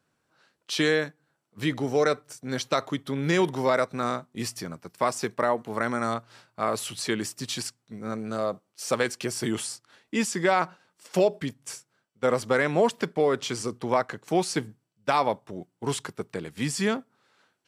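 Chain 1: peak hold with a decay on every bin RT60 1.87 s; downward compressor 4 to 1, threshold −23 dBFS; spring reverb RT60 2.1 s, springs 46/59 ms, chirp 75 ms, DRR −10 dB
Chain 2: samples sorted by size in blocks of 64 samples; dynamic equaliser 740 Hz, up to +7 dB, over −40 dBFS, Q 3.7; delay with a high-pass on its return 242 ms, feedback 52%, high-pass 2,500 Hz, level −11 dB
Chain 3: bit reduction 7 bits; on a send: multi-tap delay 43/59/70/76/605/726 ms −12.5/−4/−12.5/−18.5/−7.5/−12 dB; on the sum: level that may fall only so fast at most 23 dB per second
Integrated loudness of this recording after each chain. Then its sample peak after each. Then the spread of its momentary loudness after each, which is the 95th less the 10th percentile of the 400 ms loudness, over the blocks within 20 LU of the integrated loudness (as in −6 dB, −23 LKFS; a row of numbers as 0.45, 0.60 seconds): −17.5, −24.5, −23.5 LKFS; −3.0, −8.5, −4.0 dBFS; 5, 14, 9 LU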